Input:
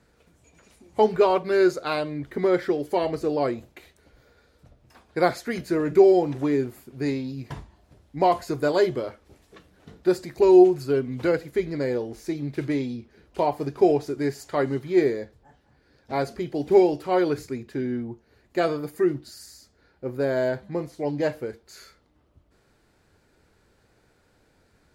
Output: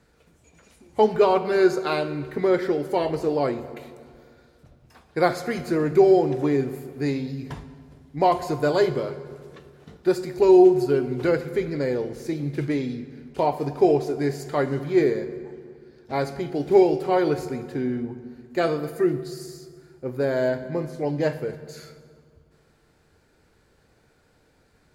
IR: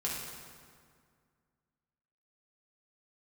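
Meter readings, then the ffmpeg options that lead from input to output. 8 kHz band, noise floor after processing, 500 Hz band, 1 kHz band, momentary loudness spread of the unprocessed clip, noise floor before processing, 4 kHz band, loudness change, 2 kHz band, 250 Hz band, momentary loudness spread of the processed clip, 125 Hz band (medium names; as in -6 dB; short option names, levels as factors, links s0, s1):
no reading, -62 dBFS, +1.0 dB, +1.0 dB, 15 LU, -64 dBFS, +1.0 dB, +1.0 dB, +1.0 dB, +1.0 dB, 16 LU, +3.0 dB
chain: -filter_complex "[0:a]asplit=2[s0][s1];[1:a]atrim=start_sample=2205[s2];[s1][s2]afir=irnorm=-1:irlink=0,volume=0.266[s3];[s0][s3]amix=inputs=2:normalize=0,volume=0.891"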